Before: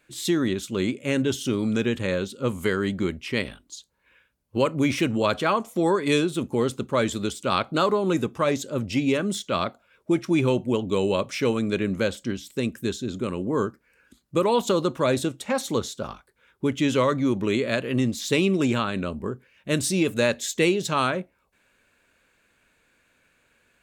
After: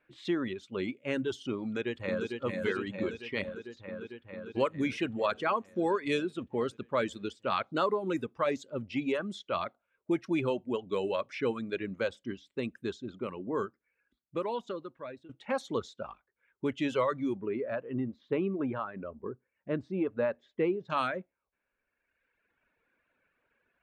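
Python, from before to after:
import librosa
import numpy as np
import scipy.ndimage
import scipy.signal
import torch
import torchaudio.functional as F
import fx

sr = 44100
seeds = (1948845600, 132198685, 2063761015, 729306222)

y = fx.echo_throw(x, sr, start_s=1.62, length_s=0.77, ms=450, feedback_pct=80, wet_db=-2.5)
y = fx.lowpass(y, sr, hz=1300.0, slope=12, at=(17.37, 20.9))
y = fx.edit(y, sr, fx.fade_out_to(start_s=13.55, length_s=1.74, floor_db=-18.0), tone=tone)
y = fx.dereverb_blind(y, sr, rt60_s=1.5)
y = fx.env_lowpass(y, sr, base_hz=2400.0, full_db=-18.0)
y = fx.bass_treble(y, sr, bass_db=-6, treble_db=-11)
y = y * 10.0 ** (-5.5 / 20.0)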